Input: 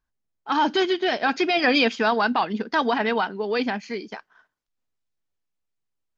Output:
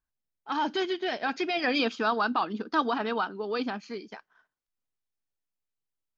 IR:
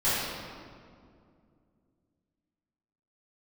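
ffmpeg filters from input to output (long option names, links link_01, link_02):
-filter_complex "[0:a]asettb=1/sr,asplit=3[link_01][link_02][link_03];[link_01]atrim=end=1.794[link_04];[link_02]atrim=start=1.79:end=3.98,asetpts=PTS-STARTPTS,afade=type=in:duration=0.004:curve=qsin,afade=type=out:start_time=2.186:duration=0.004:curve=qsin,equalizer=frequency=315:width_type=o:width=0.33:gain=8,equalizer=frequency=1250:width_type=o:width=0.33:gain=9,equalizer=frequency=2000:width_type=o:width=0.33:gain=-8,equalizer=frequency=4000:width_type=o:width=0.33:gain=3[link_05];[link_03]atrim=start=3.976[link_06];[link_04][link_05]acrossfade=duration=0.004:curve1=hsin:curve2=qsin[link_07];[link_07][link_06]acrossfade=duration=0.004:curve1=qsin:curve2=hsin,volume=-7.5dB"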